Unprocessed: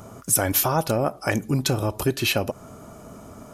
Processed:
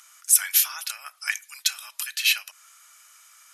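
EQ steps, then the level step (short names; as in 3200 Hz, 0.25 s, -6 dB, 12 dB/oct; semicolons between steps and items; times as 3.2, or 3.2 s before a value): inverse Chebyshev high-pass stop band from 390 Hz, stop band 70 dB; brick-wall FIR low-pass 13000 Hz; +3.5 dB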